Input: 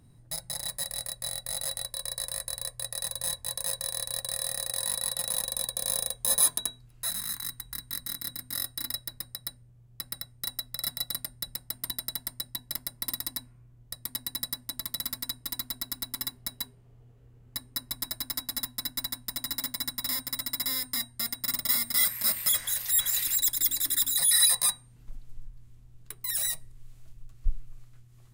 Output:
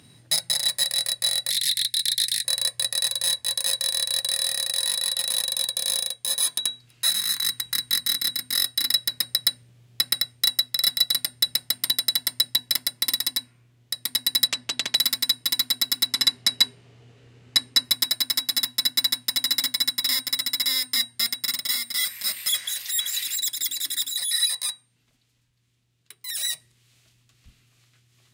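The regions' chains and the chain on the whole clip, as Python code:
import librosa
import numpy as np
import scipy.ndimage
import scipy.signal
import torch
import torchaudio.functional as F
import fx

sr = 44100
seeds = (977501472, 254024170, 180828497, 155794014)

y = fx.chain(x, sr, fx.ellip_bandstop(low_hz=220.0, high_hz=1900.0, order=3, stop_db=40),
    fx.doppler_dist(depth_ms=0.23), at=(1.5, 2.45))
y = fx.chain(y, sr, fx.self_delay(depth_ms=0.34),
    fx.air_absorb(metres=68.0), at=(14.47, 14.95))
y = fx.chain(y, sr, fx.lowpass(hz=8600.0, slope=12),
    fx.notch(hz=3300.0, q=28.0), at=(16.06, 17.85))
y = scipy.signal.sosfilt(scipy.signal.butter(2, 67.0, 'highpass', fs=sr, output='sos'), y)
y = fx.rider(y, sr, range_db=10, speed_s=0.5)
y = fx.weighting(y, sr, curve='D')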